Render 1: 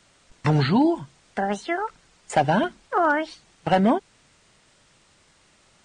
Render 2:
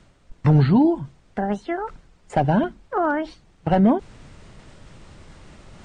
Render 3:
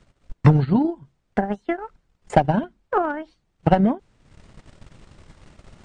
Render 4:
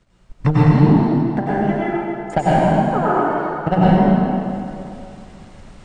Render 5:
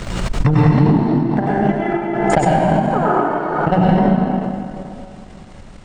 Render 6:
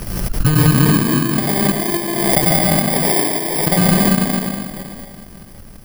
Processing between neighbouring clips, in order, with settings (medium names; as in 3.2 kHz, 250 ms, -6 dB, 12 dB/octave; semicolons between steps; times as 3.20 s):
tilt EQ -3 dB/octave; reverse; upward compressor, threshold -29 dBFS; reverse; trim -2.5 dB
transient shaper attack +11 dB, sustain -11 dB; trim -4.5 dB
plate-style reverb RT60 2.6 s, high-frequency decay 0.85×, pre-delay 85 ms, DRR -9 dB; trim -3.5 dB
transient shaper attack +4 dB, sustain -5 dB; loudness maximiser +4 dB; swell ahead of each attack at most 33 dB/s; trim -3.5 dB
bit-reversed sample order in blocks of 32 samples